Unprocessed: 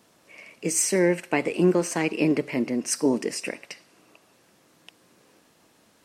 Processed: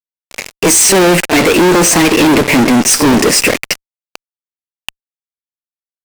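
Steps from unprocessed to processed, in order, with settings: pre-echo 31 ms -20 dB; fuzz box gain 42 dB, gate -41 dBFS; trim +6.5 dB

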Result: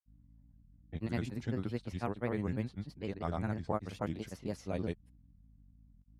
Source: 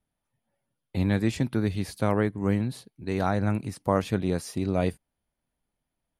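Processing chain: hum 50 Hz, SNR 22 dB; level-controlled noise filter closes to 1.7 kHz, open at -19.5 dBFS; granulator, spray 196 ms, pitch spread up and down by 3 st; trim -9 dB

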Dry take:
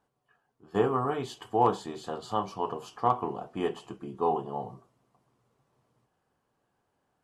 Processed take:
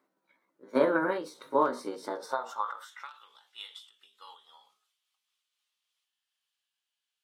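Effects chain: pitch bend over the whole clip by +5 st ending unshifted; high-pass sweep 290 Hz -> 3.2 kHz, 2.05–3.19 s; endings held to a fixed fall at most 130 dB/s

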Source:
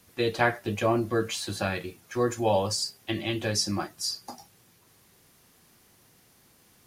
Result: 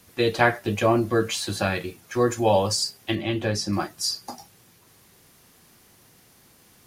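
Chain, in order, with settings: 3.15–3.73 s: treble shelf 3.4 kHz -10 dB; trim +4.5 dB

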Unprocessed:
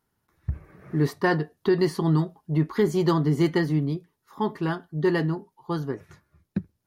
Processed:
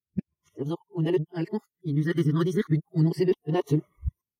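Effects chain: reverse the whole clip; spectral noise reduction 21 dB; time stretch by phase-locked vocoder 0.64×; phase shifter stages 12, 0.33 Hz, lowest notch 780–1600 Hz

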